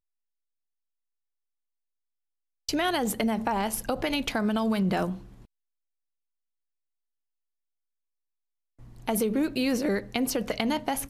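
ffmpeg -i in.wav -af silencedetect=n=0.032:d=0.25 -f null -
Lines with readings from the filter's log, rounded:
silence_start: 0.00
silence_end: 2.69 | silence_duration: 2.69
silence_start: 5.13
silence_end: 9.08 | silence_duration: 3.94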